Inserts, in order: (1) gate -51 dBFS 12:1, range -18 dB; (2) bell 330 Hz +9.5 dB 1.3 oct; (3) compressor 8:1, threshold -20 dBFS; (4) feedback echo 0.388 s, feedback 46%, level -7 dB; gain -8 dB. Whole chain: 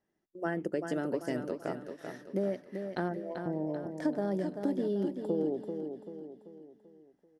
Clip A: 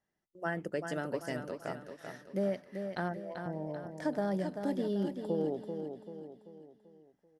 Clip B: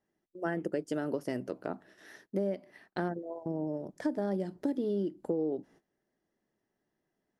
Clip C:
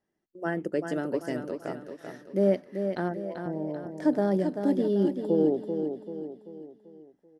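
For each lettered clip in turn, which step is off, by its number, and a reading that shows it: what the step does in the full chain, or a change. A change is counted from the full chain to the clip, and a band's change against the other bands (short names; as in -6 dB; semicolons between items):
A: 2, 250 Hz band -3.5 dB; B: 4, echo-to-direct -6.0 dB to none; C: 3, mean gain reduction 3.0 dB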